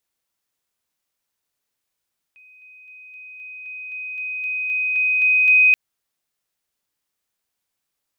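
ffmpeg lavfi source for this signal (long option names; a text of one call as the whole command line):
ffmpeg -f lavfi -i "aevalsrc='pow(10,(-46+3*floor(t/0.26))/20)*sin(2*PI*2510*t)':duration=3.38:sample_rate=44100" out.wav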